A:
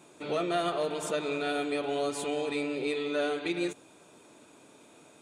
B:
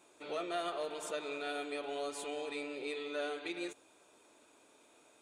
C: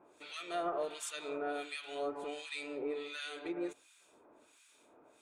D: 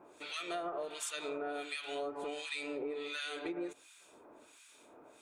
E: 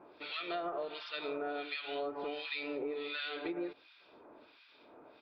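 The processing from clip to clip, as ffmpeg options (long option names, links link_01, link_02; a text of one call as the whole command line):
ffmpeg -i in.wav -af "equalizer=frequency=150:width_type=o:width=1.5:gain=-13.5,volume=-6.5dB" out.wav
ffmpeg -i in.wav -filter_complex "[0:a]acrossover=split=1500[link_01][link_02];[link_01]aeval=exprs='val(0)*(1-1/2+1/2*cos(2*PI*1.4*n/s))':channel_layout=same[link_03];[link_02]aeval=exprs='val(0)*(1-1/2-1/2*cos(2*PI*1.4*n/s))':channel_layout=same[link_04];[link_03][link_04]amix=inputs=2:normalize=0,volume=4.5dB" out.wav
ffmpeg -i in.wav -af "acompressor=threshold=-41dB:ratio=6,volume=5dB" out.wav
ffmpeg -i in.wav -af "aresample=11025,aresample=44100,volume=1dB" out.wav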